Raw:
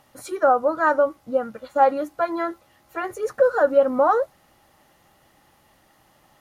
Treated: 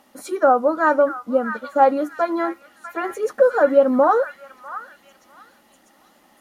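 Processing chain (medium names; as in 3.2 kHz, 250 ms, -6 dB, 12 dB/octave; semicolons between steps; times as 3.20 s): resonant low shelf 170 Hz -9 dB, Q 3; repeats whose band climbs or falls 648 ms, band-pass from 1.7 kHz, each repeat 0.7 oct, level -7 dB; trim +1.5 dB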